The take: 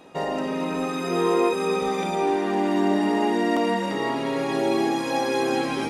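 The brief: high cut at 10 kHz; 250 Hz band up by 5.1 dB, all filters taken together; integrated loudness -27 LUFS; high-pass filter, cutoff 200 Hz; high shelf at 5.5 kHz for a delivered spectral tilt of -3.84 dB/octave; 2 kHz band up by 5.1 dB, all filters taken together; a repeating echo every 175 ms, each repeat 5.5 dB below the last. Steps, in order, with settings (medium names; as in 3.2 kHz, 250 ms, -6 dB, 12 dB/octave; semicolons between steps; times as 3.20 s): high-pass 200 Hz; low-pass 10 kHz; peaking EQ 250 Hz +8 dB; peaking EQ 2 kHz +6.5 dB; treble shelf 5.5 kHz -3.5 dB; feedback delay 175 ms, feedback 53%, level -5.5 dB; trim -8 dB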